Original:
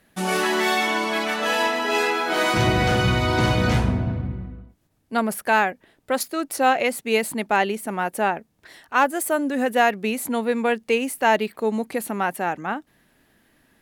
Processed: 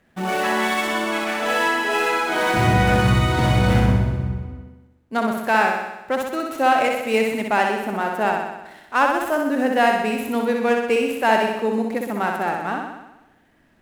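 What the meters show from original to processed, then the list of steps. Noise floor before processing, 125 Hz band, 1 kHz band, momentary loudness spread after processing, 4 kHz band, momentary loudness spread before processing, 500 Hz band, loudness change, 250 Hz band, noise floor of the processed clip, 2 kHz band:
-66 dBFS, +4.0 dB, +2.5 dB, 9 LU, -1.0 dB, 7 LU, +1.5 dB, +2.0 dB, +2.0 dB, -58 dBFS, +1.5 dB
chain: median filter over 9 samples; flutter echo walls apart 10.8 m, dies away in 0.96 s

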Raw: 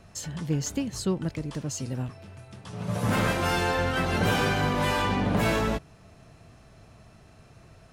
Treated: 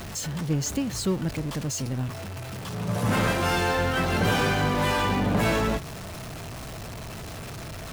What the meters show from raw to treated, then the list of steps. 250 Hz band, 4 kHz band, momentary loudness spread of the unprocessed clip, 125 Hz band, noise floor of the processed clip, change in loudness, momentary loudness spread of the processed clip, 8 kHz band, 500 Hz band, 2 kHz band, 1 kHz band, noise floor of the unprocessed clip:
+1.5 dB, +2.0 dB, 12 LU, +2.0 dB, -37 dBFS, +1.5 dB, 14 LU, +3.5 dB, +1.5 dB, +1.5 dB, +1.5 dB, -54 dBFS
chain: jump at every zero crossing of -32.5 dBFS

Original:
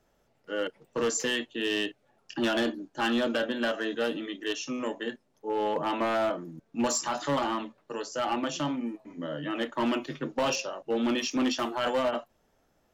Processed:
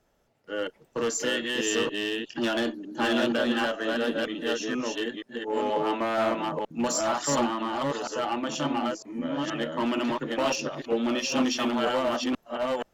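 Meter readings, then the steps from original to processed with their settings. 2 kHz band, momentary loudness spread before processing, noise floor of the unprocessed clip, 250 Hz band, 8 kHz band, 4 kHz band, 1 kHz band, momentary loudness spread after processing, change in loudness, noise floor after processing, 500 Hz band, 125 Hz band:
+2.5 dB, 9 LU, -70 dBFS, +2.5 dB, +2.5 dB, +2.5 dB, +2.5 dB, 6 LU, +2.5 dB, -67 dBFS, +2.5 dB, +2.0 dB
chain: chunks repeated in reverse 475 ms, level -1 dB; Chebyshev shaper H 8 -39 dB, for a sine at -16 dBFS

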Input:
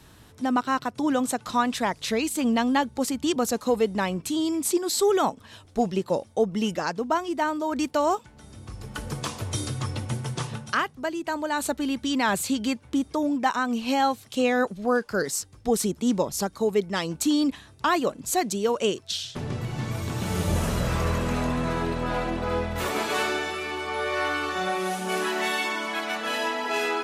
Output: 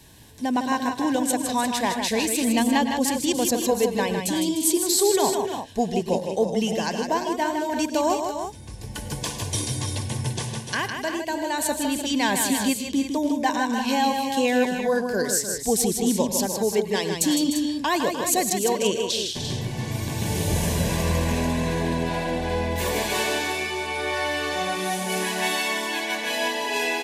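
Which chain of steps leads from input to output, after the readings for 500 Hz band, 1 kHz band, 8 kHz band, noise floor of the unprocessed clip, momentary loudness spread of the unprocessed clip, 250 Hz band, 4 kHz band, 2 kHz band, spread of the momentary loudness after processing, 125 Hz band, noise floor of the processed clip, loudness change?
+2.0 dB, +1.0 dB, +7.0 dB, -52 dBFS, 7 LU, +2.0 dB, +4.5 dB, +1.5 dB, 7 LU, +2.0 dB, -35 dBFS, +2.5 dB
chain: Butterworth band-stop 1.3 kHz, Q 3.3; treble shelf 4.4 kHz +7 dB; on a send: multi-tap echo 96/109/157/301/345 ms -17.5/-16.5/-6/-10.5/-9.5 dB

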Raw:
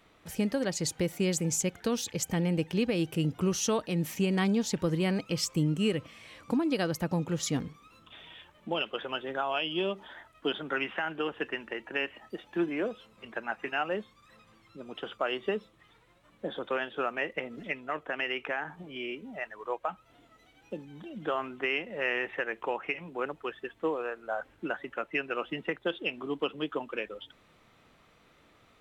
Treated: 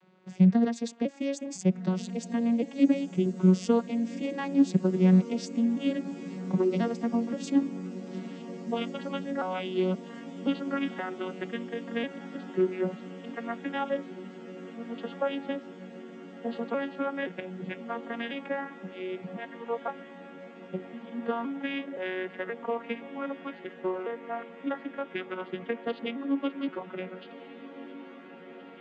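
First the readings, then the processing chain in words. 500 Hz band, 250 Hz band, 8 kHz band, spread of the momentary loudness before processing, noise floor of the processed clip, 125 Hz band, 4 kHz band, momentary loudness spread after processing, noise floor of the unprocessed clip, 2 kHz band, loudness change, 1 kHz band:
+1.0 dB, +5.5 dB, under -10 dB, 12 LU, -47 dBFS, +2.5 dB, -7.0 dB, 18 LU, -63 dBFS, -5.5 dB, +1.5 dB, -0.5 dB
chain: vocoder on a broken chord major triad, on F#3, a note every 523 ms; on a send: echo that smears into a reverb 1558 ms, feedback 78%, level -14.5 dB; on the sum: trim +3.5 dB

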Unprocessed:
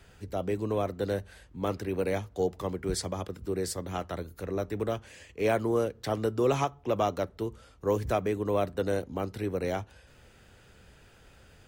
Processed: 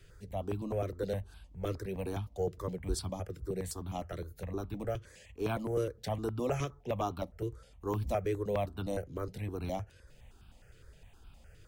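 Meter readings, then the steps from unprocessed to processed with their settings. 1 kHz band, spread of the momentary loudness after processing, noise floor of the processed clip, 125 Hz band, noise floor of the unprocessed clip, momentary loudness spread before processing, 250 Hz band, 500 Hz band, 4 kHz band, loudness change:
-6.5 dB, 8 LU, -59 dBFS, -1.5 dB, -57 dBFS, 9 LU, -6.0 dB, -6.5 dB, -6.5 dB, -5.5 dB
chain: bass shelf 94 Hz +11 dB; stepped phaser 9.7 Hz 220–1900 Hz; trim -3.5 dB

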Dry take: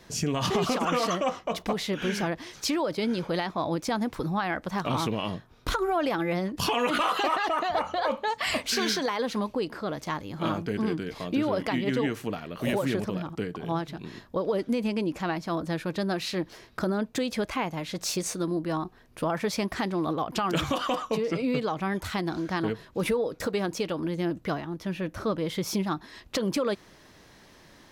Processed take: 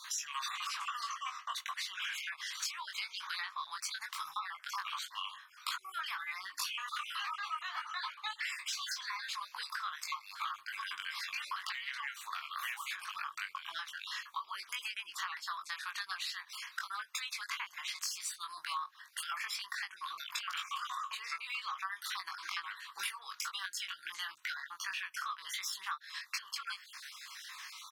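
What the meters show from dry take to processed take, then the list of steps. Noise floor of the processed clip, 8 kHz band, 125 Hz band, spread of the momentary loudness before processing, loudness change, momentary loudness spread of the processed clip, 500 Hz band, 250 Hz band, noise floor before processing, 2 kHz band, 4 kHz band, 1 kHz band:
-60 dBFS, -4.5 dB, under -40 dB, 7 LU, -10.5 dB, 4 LU, under -40 dB, under -40 dB, -55 dBFS, -4.0 dB, -4.5 dB, -10.0 dB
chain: random holes in the spectrogram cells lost 35%; elliptic high-pass 1.1 kHz, stop band 50 dB; compression 16:1, threshold -48 dBFS, peak gain reduction 23 dB; doubling 21 ms -4 dB; trim +10.5 dB

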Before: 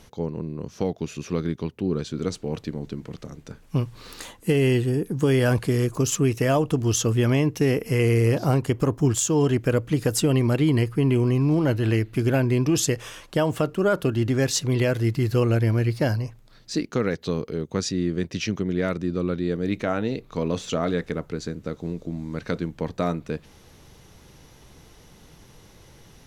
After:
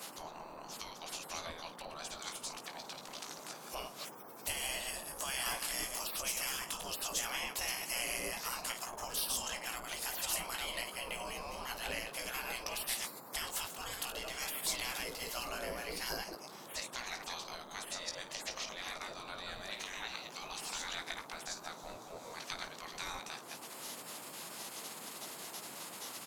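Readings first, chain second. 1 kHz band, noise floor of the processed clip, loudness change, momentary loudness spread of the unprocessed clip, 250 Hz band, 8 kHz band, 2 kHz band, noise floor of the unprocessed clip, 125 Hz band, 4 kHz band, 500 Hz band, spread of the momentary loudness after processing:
-8.5 dB, -51 dBFS, -15.5 dB, 11 LU, -29.5 dB, -7.0 dB, -7.5 dB, -52 dBFS, -36.0 dB, -4.0 dB, -22.5 dB, 10 LU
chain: chunks repeated in reverse 109 ms, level -6 dB; peaking EQ 1.5 kHz -12.5 dB 2.5 oct; early reflections 18 ms -6.5 dB, 53 ms -14 dB; compression 2:1, threshold -43 dBFS, peak gain reduction 16.5 dB; spectral gate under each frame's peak -30 dB weak; band noise 140–1200 Hz -70 dBFS; trim +17 dB

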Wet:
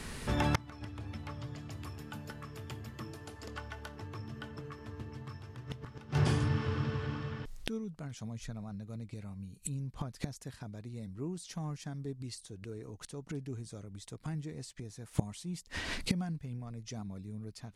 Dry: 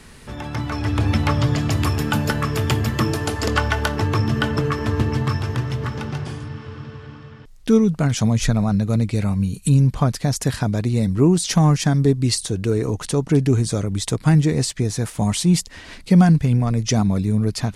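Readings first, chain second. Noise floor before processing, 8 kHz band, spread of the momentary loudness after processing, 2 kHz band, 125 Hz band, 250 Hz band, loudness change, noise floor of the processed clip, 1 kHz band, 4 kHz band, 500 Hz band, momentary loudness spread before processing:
-42 dBFS, -20.0 dB, 13 LU, -16.0 dB, -19.5 dB, -21.0 dB, -20.0 dB, -57 dBFS, -17.5 dB, -17.5 dB, -20.0 dB, 12 LU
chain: inverted gate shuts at -17 dBFS, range -25 dB; trim +1 dB

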